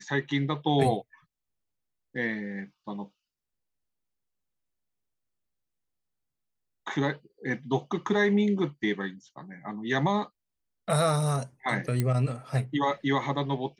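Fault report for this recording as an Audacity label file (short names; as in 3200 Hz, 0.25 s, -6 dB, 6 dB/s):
12.000000	12.000000	pop -14 dBFS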